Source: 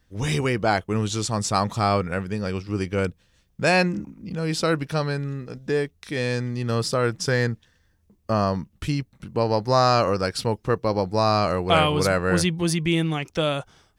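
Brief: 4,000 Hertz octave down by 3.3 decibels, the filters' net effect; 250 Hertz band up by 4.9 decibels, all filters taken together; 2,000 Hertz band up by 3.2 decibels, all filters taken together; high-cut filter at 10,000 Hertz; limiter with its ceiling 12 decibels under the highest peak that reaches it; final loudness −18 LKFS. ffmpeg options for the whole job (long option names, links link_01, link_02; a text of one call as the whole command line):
ffmpeg -i in.wav -af "lowpass=10000,equalizer=frequency=250:width_type=o:gain=7,equalizer=frequency=2000:width_type=o:gain=5.5,equalizer=frequency=4000:width_type=o:gain=-6,volume=8dB,alimiter=limit=-7dB:level=0:latency=1" out.wav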